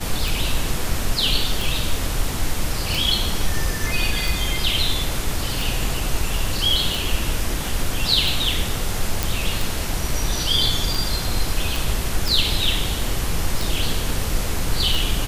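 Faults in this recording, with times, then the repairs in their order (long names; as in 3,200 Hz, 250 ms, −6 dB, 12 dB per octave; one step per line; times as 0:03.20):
scratch tick 45 rpm
0:09.23: click
0:11.76: click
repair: click removal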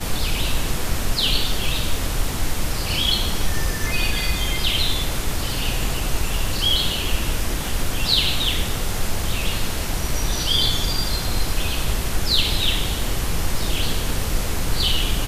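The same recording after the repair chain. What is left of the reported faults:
none of them is left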